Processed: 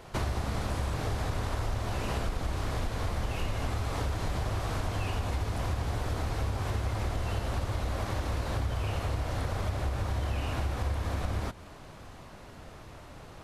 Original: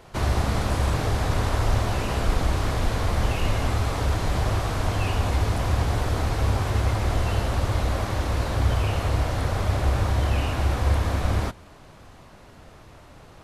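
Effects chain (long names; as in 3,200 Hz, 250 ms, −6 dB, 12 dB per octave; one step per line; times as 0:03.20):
downward compressor, threshold −28 dBFS, peak gain reduction 12 dB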